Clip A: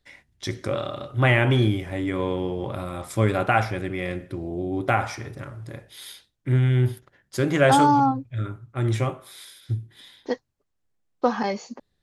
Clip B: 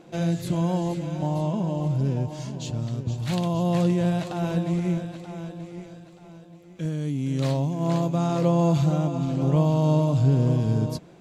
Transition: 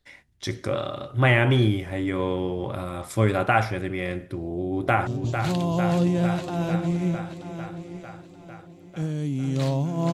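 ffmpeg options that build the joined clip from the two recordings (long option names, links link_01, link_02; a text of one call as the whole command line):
ffmpeg -i cue0.wav -i cue1.wav -filter_complex "[0:a]apad=whole_dur=10.13,atrim=end=10.13,atrim=end=5.072[link_01];[1:a]atrim=start=2.898:end=7.96[link_02];[link_01][link_02]acrossfade=duration=0.004:curve1=hsin:curve2=hsin,asplit=2[link_03][link_04];[link_04]afade=type=in:start_time=4.37:duration=0.01,afade=type=out:start_time=5.07:duration=0.01,aecho=0:1:450|900|1350|1800|2250|2700|3150|3600|4050|4500|4950|5400:0.446684|0.335013|0.25126|0.188445|0.141333|0.106|0.0795001|0.0596251|0.0447188|0.0335391|0.0251543|0.0188657[link_05];[link_03][link_05]amix=inputs=2:normalize=0" out.wav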